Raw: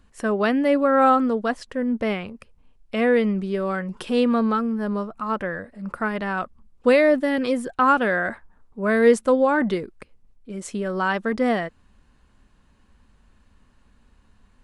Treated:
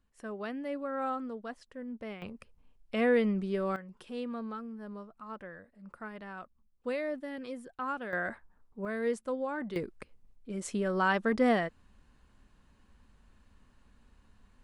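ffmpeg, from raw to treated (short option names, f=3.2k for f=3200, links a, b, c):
-af "asetnsamples=n=441:p=0,asendcmd='2.22 volume volume -7dB;3.76 volume volume -18dB;8.13 volume volume -9.5dB;8.85 volume volume -16dB;9.76 volume volume -4.5dB',volume=-17.5dB"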